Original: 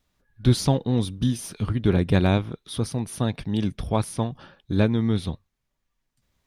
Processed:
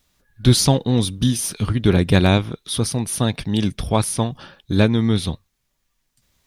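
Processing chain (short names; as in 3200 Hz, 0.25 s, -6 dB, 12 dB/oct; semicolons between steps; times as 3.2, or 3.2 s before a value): high shelf 2800 Hz +8.5 dB; gain +4.5 dB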